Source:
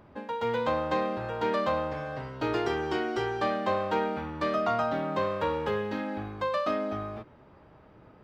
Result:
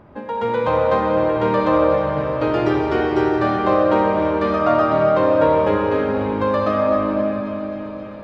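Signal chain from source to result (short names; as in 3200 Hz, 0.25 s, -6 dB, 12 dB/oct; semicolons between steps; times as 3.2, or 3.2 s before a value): high shelf 3200 Hz -11.5 dB; on a send: thin delay 0.264 s, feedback 83%, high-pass 1900 Hz, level -13 dB; on the sum: digital reverb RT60 4.5 s, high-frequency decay 0.55×, pre-delay 20 ms, DRR -0.5 dB; gain +8 dB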